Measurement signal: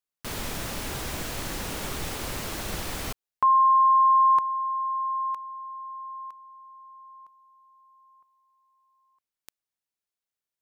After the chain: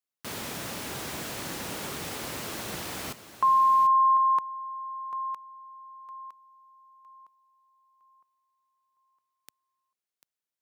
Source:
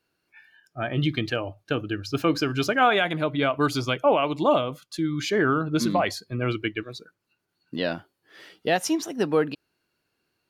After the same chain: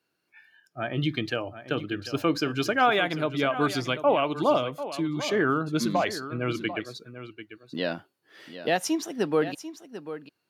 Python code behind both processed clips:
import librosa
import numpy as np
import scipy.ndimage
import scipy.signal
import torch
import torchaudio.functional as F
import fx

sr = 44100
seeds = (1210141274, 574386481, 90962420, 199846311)

p1 = scipy.signal.sosfilt(scipy.signal.butter(2, 120.0, 'highpass', fs=sr, output='sos'), x)
p2 = p1 + fx.echo_single(p1, sr, ms=743, db=-12.5, dry=0)
y = p2 * 10.0 ** (-2.0 / 20.0)